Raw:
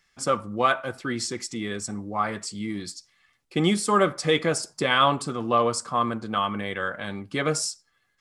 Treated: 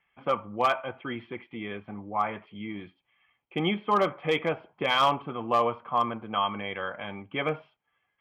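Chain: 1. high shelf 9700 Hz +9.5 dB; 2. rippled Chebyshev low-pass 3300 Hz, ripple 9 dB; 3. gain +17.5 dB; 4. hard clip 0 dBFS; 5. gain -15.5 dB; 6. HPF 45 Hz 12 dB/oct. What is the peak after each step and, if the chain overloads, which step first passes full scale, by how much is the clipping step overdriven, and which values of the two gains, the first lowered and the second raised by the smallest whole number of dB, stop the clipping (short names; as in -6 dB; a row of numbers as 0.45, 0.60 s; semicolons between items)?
-6.5, -11.5, +6.0, 0.0, -15.5, -14.5 dBFS; step 3, 6.0 dB; step 3 +11.5 dB, step 5 -9.5 dB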